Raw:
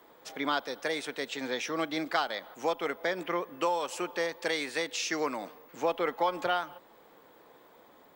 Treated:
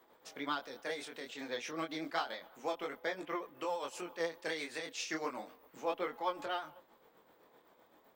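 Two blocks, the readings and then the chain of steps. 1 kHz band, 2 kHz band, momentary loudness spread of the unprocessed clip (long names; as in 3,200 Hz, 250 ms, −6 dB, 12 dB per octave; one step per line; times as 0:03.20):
−7.5 dB, −8.0 dB, 5 LU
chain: amplitude tremolo 7.8 Hz, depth 54%
chorus effect 0.31 Hz, delay 20 ms, depth 5.5 ms
pitch vibrato 12 Hz 36 cents
level −2.5 dB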